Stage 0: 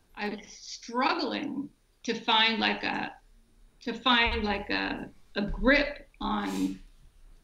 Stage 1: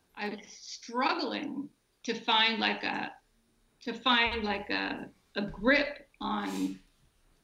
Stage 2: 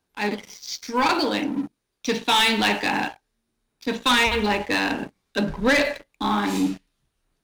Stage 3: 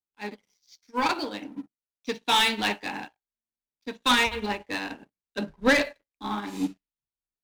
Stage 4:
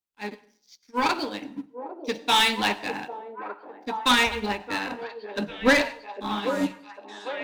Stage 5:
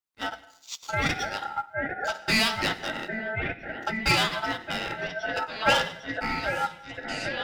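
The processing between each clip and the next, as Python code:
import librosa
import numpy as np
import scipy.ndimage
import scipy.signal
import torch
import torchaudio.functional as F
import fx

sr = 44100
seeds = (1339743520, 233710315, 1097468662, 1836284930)

y1 = fx.highpass(x, sr, hz=130.0, slope=6)
y1 = y1 * 10.0 ** (-2.0 / 20.0)
y2 = fx.leveller(y1, sr, passes=3)
y3 = fx.upward_expand(y2, sr, threshold_db=-35.0, expansion=2.5)
y4 = fx.echo_stepped(y3, sr, ms=800, hz=480.0, octaves=0.7, feedback_pct=70, wet_db=-5.0)
y4 = fx.rev_plate(y4, sr, seeds[0], rt60_s=0.52, hf_ratio=0.8, predelay_ms=80, drr_db=19.5)
y4 = y4 * 10.0 ** (1.5 / 20.0)
y5 = fx.recorder_agc(y4, sr, target_db=-19.0, rise_db_per_s=29.0, max_gain_db=30)
y5 = y5 * np.sin(2.0 * np.pi * 1100.0 * np.arange(len(y5)) / sr)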